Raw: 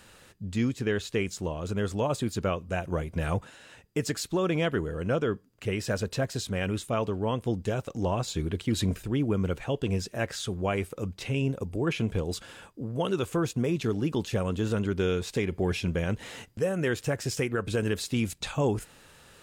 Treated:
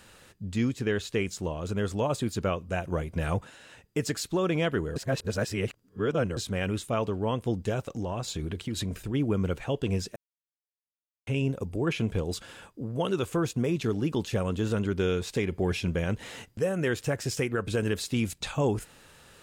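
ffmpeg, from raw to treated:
-filter_complex "[0:a]asplit=3[a][b][c];[a]afade=t=out:st=7.82:d=0.02[d];[b]acompressor=threshold=-28dB:ratio=6:attack=3.2:release=140:knee=1:detection=peak,afade=t=in:st=7.82:d=0.02,afade=t=out:st=9.13:d=0.02[e];[c]afade=t=in:st=9.13:d=0.02[f];[d][e][f]amix=inputs=3:normalize=0,asplit=5[g][h][i][j][k];[g]atrim=end=4.962[l];[h]atrim=start=4.958:end=6.372,asetpts=PTS-STARTPTS,areverse[m];[i]atrim=start=6.368:end=10.16,asetpts=PTS-STARTPTS,afade=t=out:st=3.788:d=0.004:c=hsin[n];[j]atrim=start=10.16:end=11.27,asetpts=PTS-STARTPTS,volume=0[o];[k]atrim=start=11.27,asetpts=PTS-STARTPTS,afade=t=in:d=0.004:c=hsin[p];[l][m]acrossfade=d=0.004:c1=hsin:c2=hsin[q];[n][o][p]concat=n=3:v=0:a=1[r];[q][r]acrossfade=d=0.004:c1=hsin:c2=hsin"

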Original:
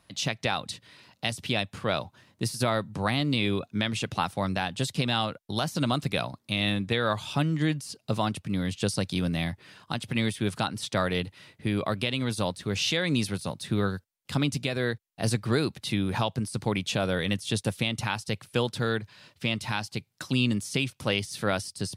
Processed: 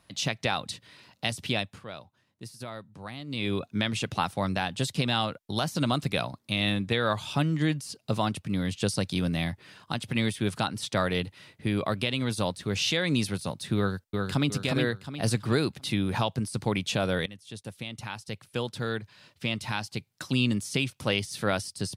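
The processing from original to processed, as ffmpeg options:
-filter_complex "[0:a]asplit=2[a][b];[b]afade=t=in:st=13.77:d=0.01,afade=t=out:st=14.49:d=0.01,aecho=0:1:360|720|1080|1440|1800:0.707946|0.247781|0.0867234|0.0303532|0.0106236[c];[a][c]amix=inputs=2:normalize=0,asplit=4[d][e][f][g];[d]atrim=end=1.85,asetpts=PTS-STARTPTS,afade=t=out:st=1.42:d=0.43:c=qsin:silence=0.211349[h];[e]atrim=start=1.85:end=3.27,asetpts=PTS-STARTPTS,volume=-13.5dB[i];[f]atrim=start=3.27:end=17.26,asetpts=PTS-STARTPTS,afade=t=in:d=0.43:c=qsin:silence=0.211349,afade=t=out:st=13.986:d=0.004:c=hsin:silence=0.105925[j];[g]atrim=start=17.26,asetpts=PTS-STARTPTS,afade=t=in:d=3.81:c=qsin:silence=0.105925[k];[h][i][j][k]concat=n=4:v=0:a=1"

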